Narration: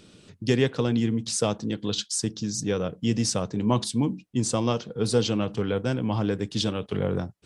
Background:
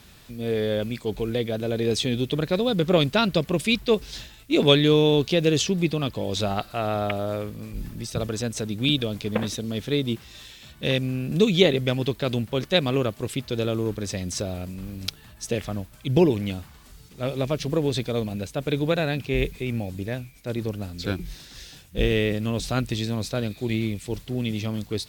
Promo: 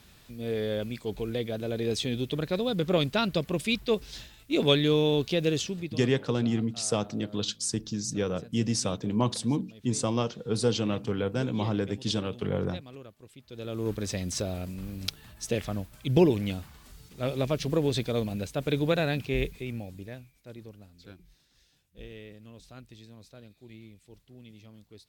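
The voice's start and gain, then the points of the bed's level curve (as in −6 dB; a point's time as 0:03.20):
5.50 s, −3.0 dB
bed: 0:05.50 −5.5 dB
0:06.29 −22.5 dB
0:13.38 −22.5 dB
0:13.90 −2.5 dB
0:19.18 −2.5 dB
0:21.21 −23 dB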